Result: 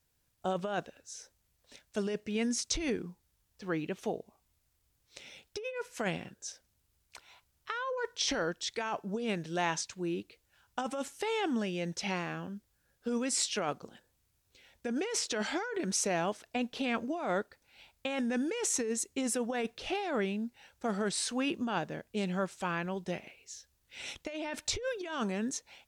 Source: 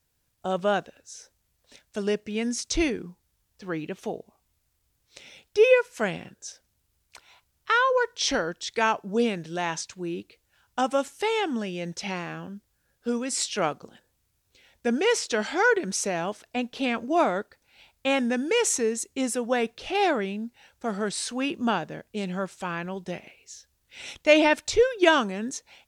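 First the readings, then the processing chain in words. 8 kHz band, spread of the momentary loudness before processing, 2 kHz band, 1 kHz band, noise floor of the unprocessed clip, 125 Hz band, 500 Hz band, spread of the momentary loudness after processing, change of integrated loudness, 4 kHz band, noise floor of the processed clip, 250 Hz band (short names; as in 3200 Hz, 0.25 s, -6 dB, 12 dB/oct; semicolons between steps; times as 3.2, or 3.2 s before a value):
-3.5 dB, 18 LU, -10.5 dB, -9.5 dB, -73 dBFS, -3.0 dB, -10.5 dB, 14 LU, -8.5 dB, -6.5 dB, -76 dBFS, -6.0 dB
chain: negative-ratio compressor -27 dBFS, ratio -1; gain -5.5 dB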